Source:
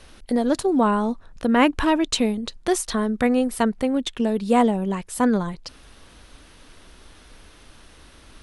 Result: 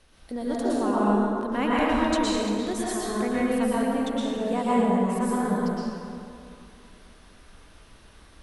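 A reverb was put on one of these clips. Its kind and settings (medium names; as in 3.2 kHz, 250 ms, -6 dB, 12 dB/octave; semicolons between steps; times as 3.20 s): plate-style reverb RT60 2.6 s, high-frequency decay 0.5×, pre-delay 100 ms, DRR -8 dB; trim -12 dB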